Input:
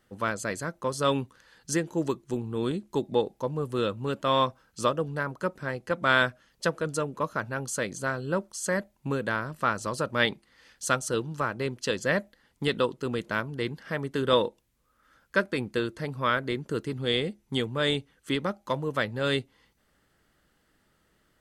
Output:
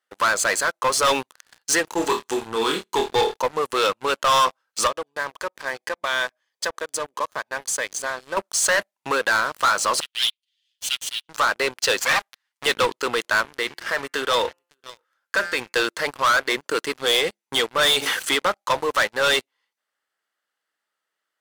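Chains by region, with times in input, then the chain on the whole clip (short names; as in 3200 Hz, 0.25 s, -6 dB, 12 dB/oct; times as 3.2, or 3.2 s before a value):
1.93–3.37 bell 580 Hz -12.5 dB 0.24 oct + doubler 22 ms -13 dB + flutter echo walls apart 4.6 m, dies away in 0.27 s
4.87–8.37 compressor 2:1, threshold -42 dBFS + notch comb 1400 Hz
10–11.29 minimum comb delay 7.1 ms + ladder high-pass 2900 Hz, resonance 70% + upward compressor, threshold -56 dBFS
11.99–12.66 minimum comb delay 7.6 ms + bell 390 Hz -15 dB 1.3 oct
13.41–15.73 de-hum 174.3 Hz, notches 17 + compressor 1.5:1, threshold -38 dBFS + echo 0.556 s -21 dB
17.82–18.31 high shelf 3900 Hz +6 dB + sustainer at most 76 dB/s
whole clip: HPF 760 Hz 12 dB/oct; sample leveller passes 5; high shelf 11000 Hz -4 dB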